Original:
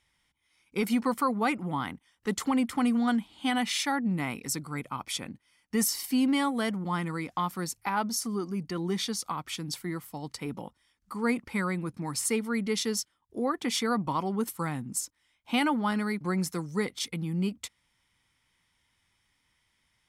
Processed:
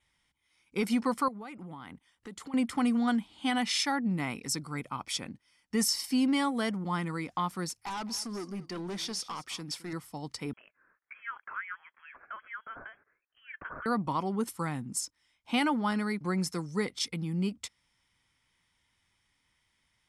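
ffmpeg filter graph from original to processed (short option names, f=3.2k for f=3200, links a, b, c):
-filter_complex "[0:a]asettb=1/sr,asplit=3[a][b][c];[a]atrim=end=1.284[d];[b]atrim=start=1.28:end=2.54,asetpts=PTS-STARTPTS,afade=t=in:d=0.004:c=qsin,afade=t=out:st=1.256:d=0.004:c=qsin,equalizer=f=5.6k:w=6.1:g=-4,acompressor=threshold=-39dB:ratio=8:attack=3.2:release=140:knee=1:detection=peak[e];[c]atrim=start=2.536[f];[d][e]acrossfade=d=0.004:c1=hsin:c2=qsin[g];[g][f]acrossfade=d=0.004:c1=qsin:c2=hsin,asettb=1/sr,asplit=3[h][i][j];[h]atrim=end=7.694[k];[i]atrim=start=7.69:end=9.93,asetpts=PTS-STARTPTS,afade=t=in:d=0.004:c=qsin,afade=t=out:st=2.236:d=0.004:c=qsin,lowshelf=f=190:g=-8.5,volume=32.5dB,asoftclip=hard,volume=-32.5dB,aecho=1:1:213:0.133,atrim=end_sample=98784[l];[j]atrim=start=9.926[m];[k][l]acrossfade=d=0.004:c1=hsin:c2=qsin[n];[n][m]acrossfade=d=0.004:c1=qsin:c2=hsin,asettb=1/sr,asplit=3[o][p][q];[o]atrim=end=10.534[r];[p]atrim=start=10.53:end=13.86,asetpts=PTS-STARTPTS,afade=t=in:d=0.004:c=qsin,afade=t=out:st=3.326:d=0.004:c=qsin,acompressor=threshold=-34dB:ratio=4:attack=3.2:release=140:knee=1:detection=peak,highpass=f=1.9k:t=q:w=2.7,lowpass=f=3k:t=q:w=0.5098,lowpass=f=3k:t=q:w=0.6013,lowpass=f=3k:t=q:w=0.9,lowpass=f=3k:t=q:w=2.563,afreqshift=-3500[s];[q]atrim=start=13.856[t];[r][s]acrossfade=d=0.004:c1=hsin:c2=qsin[u];[u][t]acrossfade=d=0.004:c1=qsin:c2=hsin,lowpass=f=11k:w=0.5412,lowpass=f=11k:w=1.3066,adynamicequalizer=threshold=0.002:dfrequency=5200:dqfactor=5.9:tfrequency=5200:tqfactor=5.9:attack=5:release=100:ratio=0.375:range=4:mode=boostabove:tftype=bell,volume=-1.5dB"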